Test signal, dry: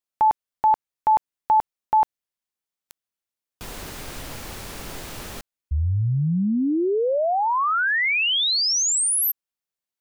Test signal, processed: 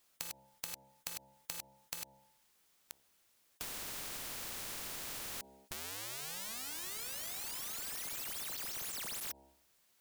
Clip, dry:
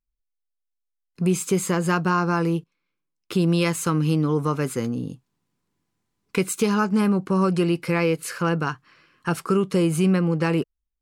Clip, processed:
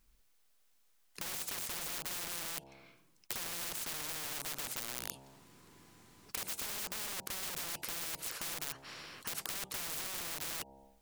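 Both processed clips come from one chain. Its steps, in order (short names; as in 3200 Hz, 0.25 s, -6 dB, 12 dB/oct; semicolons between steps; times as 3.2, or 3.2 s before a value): wrapped overs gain 23 dB; compressor 6:1, threshold -38 dBFS; de-hum 67.27 Hz, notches 14; spectral compressor 4:1; gain +8.5 dB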